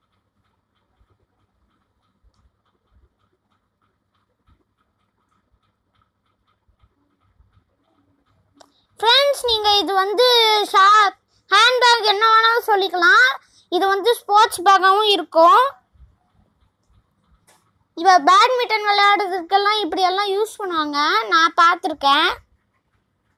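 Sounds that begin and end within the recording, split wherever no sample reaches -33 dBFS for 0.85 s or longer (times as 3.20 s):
8.61–15.71 s
17.97–22.37 s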